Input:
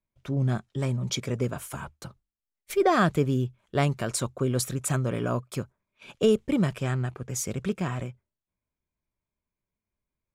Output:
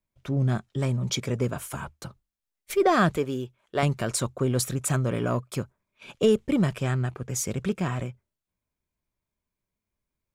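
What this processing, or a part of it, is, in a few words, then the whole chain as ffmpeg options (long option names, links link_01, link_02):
parallel distortion: -filter_complex "[0:a]asettb=1/sr,asplit=3[link_01][link_02][link_03];[link_01]atrim=end=3.174[link_04];[link_02]atrim=start=3.17:end=3.83,asetpts=PTS-STARTPTS,afade=type=in:duration=0.004:curve=qsin,afade=type=out:start_time=0.656:duration=0.004:curve=qsin,bass=frequency=250:gain=-13,treble=frequency=4000:gain=-2[link_05];[link_03]atrim=start=3.826[link_06];[link_04][link_05]acrossfade=duration=0.004:curve1=hsin:curve2=qsin[link_07];[link_07][link_06]acrossfade=duration=0.004:curve1=qsin:curve2=hsin,asplit=2[link_08][link_09];[link_09]asoftclip=type=hard:threshold=-25.5dB,volume=-12dB[link_10];[link_08][link_10]amix=inputs=2:normalize=0"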